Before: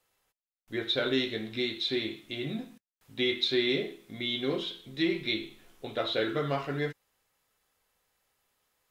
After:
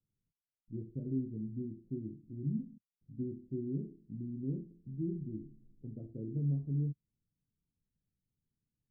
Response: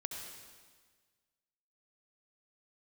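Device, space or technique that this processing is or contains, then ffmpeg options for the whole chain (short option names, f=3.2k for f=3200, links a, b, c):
the neighbour's flat through the wall: -af "lowpass=f=260:w=0.5412,lowpass=f=260:w=1.3066,equalizer=f=140:t=o:w=0.97:g=7,volume=-2dB"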